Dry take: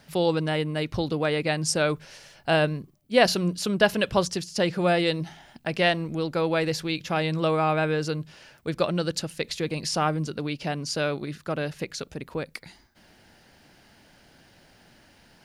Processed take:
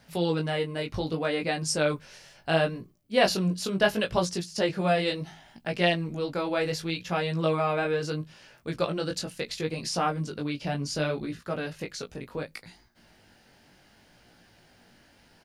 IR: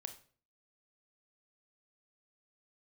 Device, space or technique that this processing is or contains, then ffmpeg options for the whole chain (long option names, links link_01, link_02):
double-tracked vocal: -filter_complex "[0:a]asettb=1/sr,asplit=3[link_01][link_02][link_03];[link_01]atrim=end=10.654[link_04];[link_02]atrim=start=10.65:end=11.39,asetpts=PTS-STARTPTS,afade=type=in:duration=0.004:curve=qsin,afade=type=out:start_time=0.736:duration=0.004:curve=qsin,lowshelf=frequency=130:gain=10.5[link_05];[link_03]atrim=start=11.386[link_06];[link_04][link_05]acrossfade=duration=0.004:curve1=hsin:curve2=qsin[link_07];[link_07][link_06]acrossfade=duration=0.004:curve1=qsin:curve2=hsin,asplit=2[link_08][link_09];[link_09]adelay=17,volume=-13.5dB[link_10];[link_08][link_10]amix=inputs=2:normalize=0,flanger=delay=17:depth=4.7:speed=0.7"